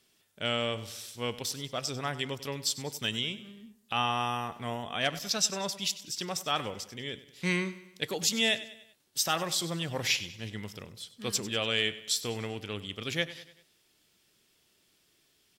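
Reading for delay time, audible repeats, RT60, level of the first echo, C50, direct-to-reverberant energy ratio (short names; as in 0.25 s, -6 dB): 97 ms, 4, none, -16.0 dB, none, none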